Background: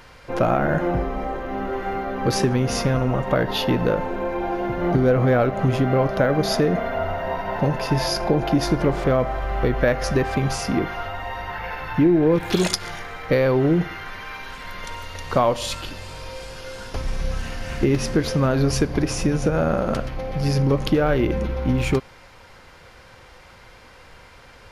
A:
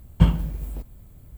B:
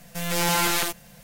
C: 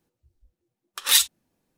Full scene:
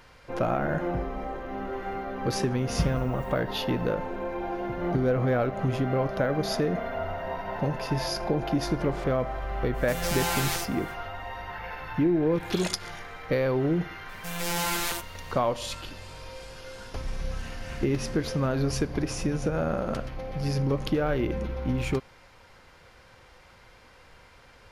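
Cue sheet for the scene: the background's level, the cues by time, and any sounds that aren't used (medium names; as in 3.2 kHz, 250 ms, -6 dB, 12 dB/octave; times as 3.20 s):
background -7 dB
2.58 s: add A -11 dB
9.73 s: add B -7 dB, fades 0.05 s + companding laws mixed up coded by mu
14.09 s: add B -6 dB
not used: C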